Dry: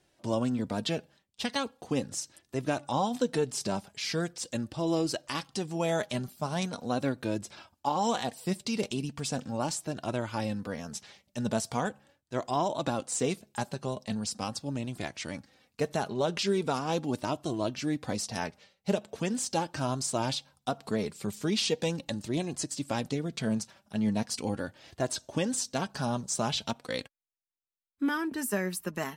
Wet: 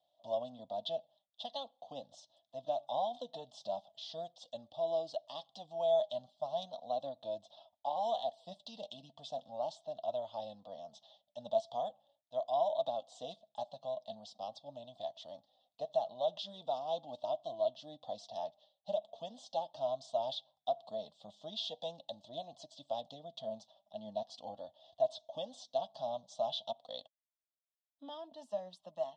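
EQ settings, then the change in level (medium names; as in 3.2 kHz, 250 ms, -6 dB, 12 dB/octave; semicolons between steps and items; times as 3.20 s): two resonant band-passes 1.5 kHz, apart 2.4 oct; distance through air 130 m; static phaser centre 950 Hz, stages 4; +6.5 dB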